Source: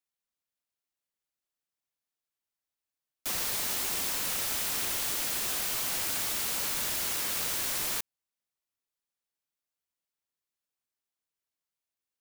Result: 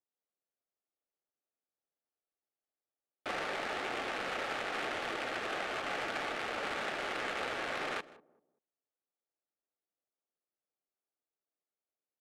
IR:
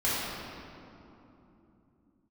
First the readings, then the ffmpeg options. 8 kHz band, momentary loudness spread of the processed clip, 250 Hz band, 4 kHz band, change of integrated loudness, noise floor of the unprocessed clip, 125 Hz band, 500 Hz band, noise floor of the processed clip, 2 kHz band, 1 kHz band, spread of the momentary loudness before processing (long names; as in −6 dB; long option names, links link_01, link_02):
−22.0 dB, 2 LU, +1.5 dB, −7.5 dB, −7.5 dB, below −85 dBFS, −6.0 dB, +6.0 dB, below −85 dBFS, +2.0 dB, +4.0 dB, 2 LU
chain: -filter_complex "[0:a]highpass=380,lowpass=3900,asplit=2[link_01][link_02];[link_02]adelay=193,lowpass=frequency=960:poles=1,volume=-14.5dB,asplit=2[link_03][link_04];[link_04]adelay=193,lowpass=frequency=960:poles=1,volume=0.33,asplit=2[link_05][link_06];[link_06]adelay=193,lowpass=frequency=960:poles=1,volume=0.33[link_07];[link_03][link_05][link_07]amix=inputs=3:normalize=0[link_08];[link_01][link_08]amix=inputs=2:normalize=0,adynamicsmooth=sensitivity=5:basefreq=820,bandreject=frequency=990:width=5.5,asplit=2[link_09][link_10];[link_10]aecho=0:1:158:0.075[link_11];[link_09][link_11]amix=inputs=2:normalize=0,volume=7.5dB"